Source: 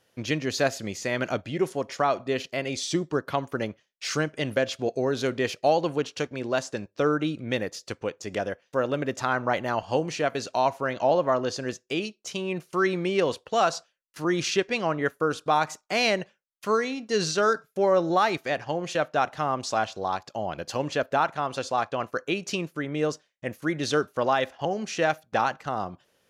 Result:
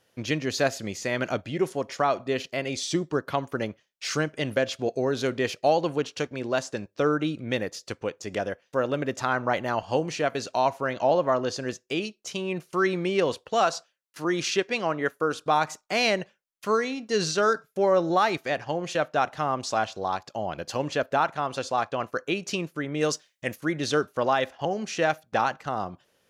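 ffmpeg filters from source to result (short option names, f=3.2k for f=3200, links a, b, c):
-filter_complex "[0:a]asettb=1/sr,asplit=3[a][b][c];[a]atrim=end=13.644[d];[b]atrim=start=13.64:end=15.39,asetpts=PTS-STARTPTS,afade=t=in:d=0.004:c=qsin,afade=t=out:st=1.746:d=0.004:c=qsin,highpass=f=180:p=1[e];[c]atrim=start=15.386[f];[d][e]acrossfade=d=0.004:c1=hsin:c2=qsin[g];[g][f]acrossfade=d=0.004:c1=qsin:c2=hsin,asplit=3[h][i][j];[h]afade=t=out:st=23:d=0.02[k];[i]highshelf=f=2.1k:g=11,afade=t=in:st=23:d=0.02,afade=t=out:st=23.54:d=0.02[l];[j]afade=t=in:st=23.54:d=0.02[m];[k][l][m]amix=inputs=3:normalize=0"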